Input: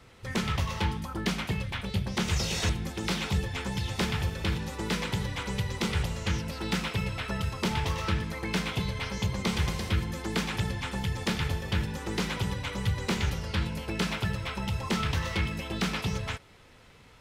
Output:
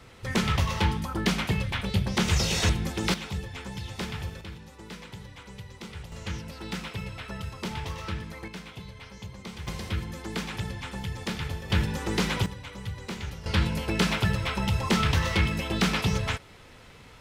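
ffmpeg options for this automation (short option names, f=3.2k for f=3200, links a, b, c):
-af "asetnsamples=n=441:p=0,asendcmd='3.14 volume volume -5dB;4.41 volume volume -12dB;6.12 volume volume -5dB;8.48 volume volume -11.5dB;9.67 volume volume -3dB;11.7 volume volume 4dB;12.46 volume volume -7dB;13.46 volume volume 5dB',volume=4dB"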